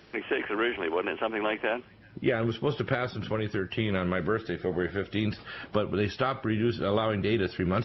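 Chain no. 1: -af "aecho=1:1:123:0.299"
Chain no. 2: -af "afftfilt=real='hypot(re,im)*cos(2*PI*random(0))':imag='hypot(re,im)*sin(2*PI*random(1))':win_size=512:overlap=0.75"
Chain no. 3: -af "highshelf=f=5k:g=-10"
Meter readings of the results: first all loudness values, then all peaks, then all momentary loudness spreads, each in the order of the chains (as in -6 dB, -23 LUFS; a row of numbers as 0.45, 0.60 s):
-29.0, -35.5, -30.0 LUFS; -12.5, -19.5, -13.0 dBFS; 4, 4, 4 LU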